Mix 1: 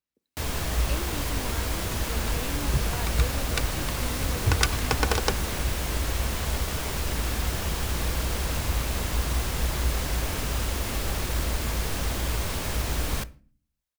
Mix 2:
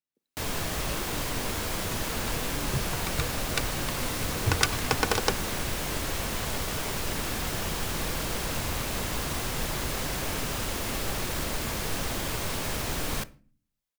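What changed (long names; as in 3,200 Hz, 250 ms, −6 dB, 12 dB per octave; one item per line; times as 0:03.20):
speech −4.5 dB
master: add parametric band 60 Hz −14.5 dB 0.67 octaves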